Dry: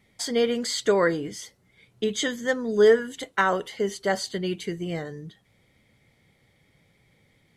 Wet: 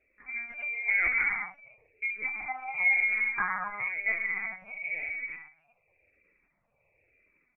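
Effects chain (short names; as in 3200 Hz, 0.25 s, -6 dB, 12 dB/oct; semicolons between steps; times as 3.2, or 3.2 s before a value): half-wave gain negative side -3 dB; HPF 160 Hz 12 dB/oct; tilt -1.5 dB/oct; comb 3.2 ms, depth 41%; non-linear reverb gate 0.45 s flat, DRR -1.5 dB; inverted band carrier 2600 Hz; LPC vocoder at 8 kHz pitch kept; endless phaser -0.98 Hz; gain -6.5 dB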